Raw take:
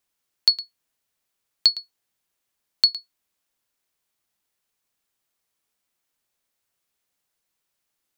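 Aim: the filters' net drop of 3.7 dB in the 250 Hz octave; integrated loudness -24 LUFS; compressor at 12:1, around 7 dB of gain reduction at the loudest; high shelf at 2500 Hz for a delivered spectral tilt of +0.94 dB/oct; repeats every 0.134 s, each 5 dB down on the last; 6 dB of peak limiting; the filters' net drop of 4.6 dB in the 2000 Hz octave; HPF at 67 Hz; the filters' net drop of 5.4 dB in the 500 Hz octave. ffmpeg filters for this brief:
-af "highpass=67,equalizer=f=250:t=o:g=-3,equalizer=f=500:t=o:g=-6,equalizer=f=2k:t=o:g=-9,highshelf=f=2.5k:g=5.5,acompressor=threshold=-16dB:ratio=12,alimiter=limit=-8.5dB:level=0:latency=1,aecho=1:1:134|268|402|536|670|804|938:0.562|0.315|0.176|0.0988|0.0553|0.031|0.0173,volume=5dB"

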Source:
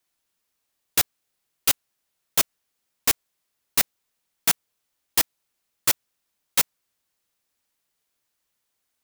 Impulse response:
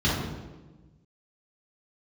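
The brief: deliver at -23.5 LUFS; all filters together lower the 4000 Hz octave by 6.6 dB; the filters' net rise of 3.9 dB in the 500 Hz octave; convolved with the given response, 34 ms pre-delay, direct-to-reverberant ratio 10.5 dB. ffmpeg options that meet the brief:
-filter_complex "[0:a]equalizer=f=500:t=o:g=5,equalizer=f=4k:t=o:g=-9,asplit=2[a][b];[1:a]atrim=start_sample=2205,adelay=34[c];[b][c]afir=irnorm=-1:irlink=0,volume=-25dB[d];[a][d]amix=inputs=2:normalize=0,volume=1.5dB"

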